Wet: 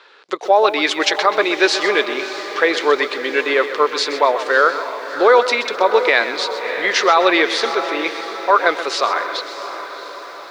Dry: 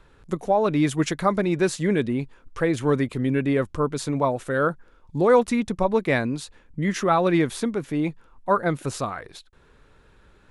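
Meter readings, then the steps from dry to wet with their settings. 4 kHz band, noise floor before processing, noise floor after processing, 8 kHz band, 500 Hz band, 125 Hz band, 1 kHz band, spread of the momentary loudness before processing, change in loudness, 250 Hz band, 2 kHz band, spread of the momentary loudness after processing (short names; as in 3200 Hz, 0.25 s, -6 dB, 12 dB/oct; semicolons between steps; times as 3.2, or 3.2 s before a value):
+17.5 dB, -56 dBFS, -34 dBFS, +6.0 dB, +6.5 dB, under -25 dB, +9.5 dB, 11 LU, +7.0 dB, -3.0 dB, +14.0 dB, 12 LU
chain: Chebyshev band-pass 390–4600 Hz, order 3; tilt +3.5 dB/oct; diffused feedback echo 0.643 s, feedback 55%, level -12 dB; maximiser +13 dB; lo-fi delay 0.128 s, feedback 35%, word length 7-bit, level -12 dB; gain -1.5 dB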